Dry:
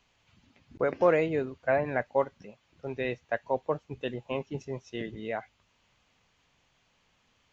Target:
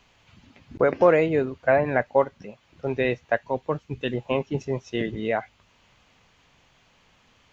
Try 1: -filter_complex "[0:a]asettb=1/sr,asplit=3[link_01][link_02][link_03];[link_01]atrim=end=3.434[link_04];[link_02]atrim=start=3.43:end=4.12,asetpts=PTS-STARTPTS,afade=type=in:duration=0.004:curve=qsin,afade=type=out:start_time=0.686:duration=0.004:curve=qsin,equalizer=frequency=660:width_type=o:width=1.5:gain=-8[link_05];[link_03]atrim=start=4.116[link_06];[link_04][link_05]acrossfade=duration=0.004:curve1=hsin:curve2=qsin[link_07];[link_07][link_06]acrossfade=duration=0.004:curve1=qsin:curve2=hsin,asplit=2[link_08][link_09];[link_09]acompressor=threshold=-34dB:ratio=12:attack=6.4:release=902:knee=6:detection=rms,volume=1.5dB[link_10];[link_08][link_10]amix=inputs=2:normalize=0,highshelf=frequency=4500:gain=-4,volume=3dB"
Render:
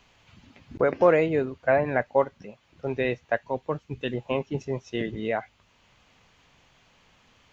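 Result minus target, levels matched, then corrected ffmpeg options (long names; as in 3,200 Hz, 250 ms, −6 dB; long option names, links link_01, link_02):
downward compressor: peak gain reduction +8 dB
-filter_complex "[0:a]asettb=1/sr,asplit=3[link_01][link_02][link_03];[link_01]atrim=end=3.434[link_04];[link_02]atrim=start=3.43:end=4.12,asetpts=PTS-STARTPTS,afade=type=in:duration=0.004:curve=qsin,afade=type=out:start_time=0.686:duration=0.004:curve=qsin,equalizer=frequency=660:width_type=o:width=1.5:gain=-8[link_05];[link_03]atrim=start=4.116[link_06];[link_04][link_05]acrossfade=duration=0.004:curve1=hsin:curve2=qsin[link_07];[link_07][link_06]acrossfade=duration=0.004:curve1=qsin:curve2=hsin,asplit=2[link_08][link_09];[link_09]acompressor=threshold=-25.5dB:ratio=12:attack=6.4:release=902:knee=6:detection=rms,volume=1.5dB[link_10];[link_08][link_10]amix=inputs=2:normalize=0,highshelf=frequency=4500:gain=-4,volume=3dB"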